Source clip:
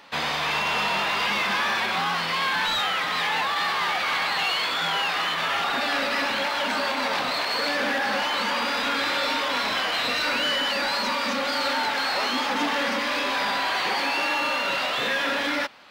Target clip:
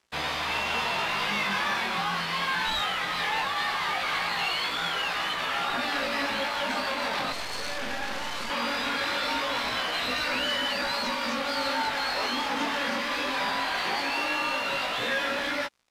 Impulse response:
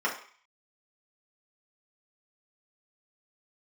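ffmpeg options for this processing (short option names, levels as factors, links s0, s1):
-filter_complex "[0:a]lowshelf=f=97:g=11.5,aeval=exprs='sgn(val(0))*max(abs(val(0))-0.00668,0)':c=same,flanger=delay=15.5:depth=7.2:speed=0.19,asettb=1/sr,asplit=3[s0][s1][s2];[s0]atrim=end=7.324[s3];[s1]atrim=start=7.32:end=8.5,asetpts=PTS-STARTPTS,afade=t=in:d=0.004:c=qsin,afade=t=out:st=1.176:d=0.004:c=qsin,aeval=exprs='max(val(0),0)':c=same[s4];[s2]atrim=start=8.496[s5];[s3][s4]acrossfade=d=0.004:c1=hsin:c2=qsin[s6];[s6][s5]acrossfade=d=0.004:c1=qsin:c2=hsin,aresample=32000,aresample=44100"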